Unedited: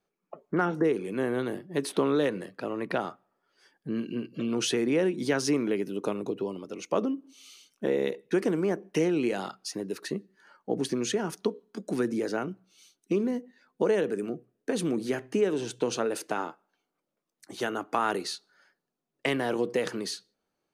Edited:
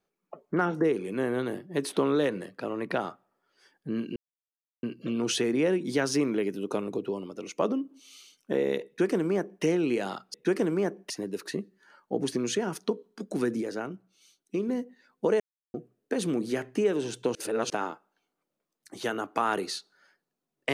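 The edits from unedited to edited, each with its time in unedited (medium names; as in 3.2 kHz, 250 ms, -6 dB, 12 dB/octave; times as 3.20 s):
4.16 s: insert silence 0.67 s
8.20–8.96 s: copy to 9.67 s
12.18–13.26 s: gain -3.5 dB
13.97–14.31 s: mute
15.92–16.27 s: reverse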